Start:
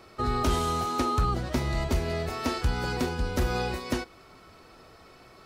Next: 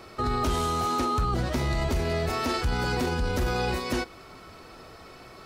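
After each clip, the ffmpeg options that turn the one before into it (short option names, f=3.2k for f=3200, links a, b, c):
-af "alimiter=level_in=0.5dB:limit=-24dB:level=0:latency=1:release=12,volume=-0.5dB,volume=5.5dB"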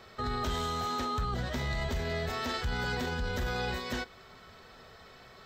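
-af "superequalizer=6b=0.398:11b=1.78:13b=1.78:16b=0.282,volume=-6.5dB"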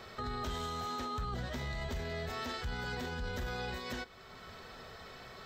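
-af "alimiter=level_in=9.5dB:limit=-24dB:level=0:latency=1:release=476,volume=-9.5dB,volume=3dB"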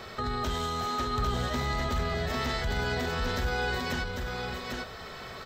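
-af "aecho=1:1:799:0.668,volume=7dB"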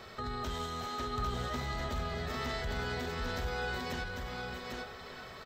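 -filter_complex "[0:a]asplit=2[a][b];[b]adelay=390,highpass=300,lowpass=3.4k,asoftclip=type=hard:threshold=-29dB,volume=-6dB[c];[a][c]amix=inputs=2:normalize=0,volume=-6.5dB"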